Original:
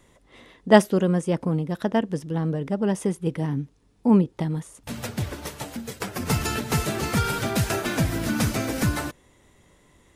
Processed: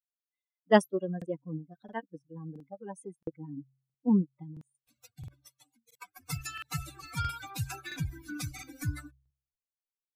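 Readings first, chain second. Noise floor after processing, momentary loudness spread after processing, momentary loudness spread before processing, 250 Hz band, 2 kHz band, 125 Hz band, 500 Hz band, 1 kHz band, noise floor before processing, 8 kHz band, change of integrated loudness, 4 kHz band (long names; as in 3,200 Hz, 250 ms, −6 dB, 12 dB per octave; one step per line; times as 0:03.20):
below −85 dBFS, 21 LU, 14 LU, −10.0 dB, −10.0 dB, −12.0 dB, −9.5 dB, −9.0 dB, −59 dBFS, −12.5 dB, −9.0 dB, −11.5 dB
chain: spectral dynamics exaggerated over time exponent 3
hum removal 66.53 Hz, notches 2
regular buffer underruns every 0.67 s, samples 2,048, repeat, from 0:00.50
level −4 dB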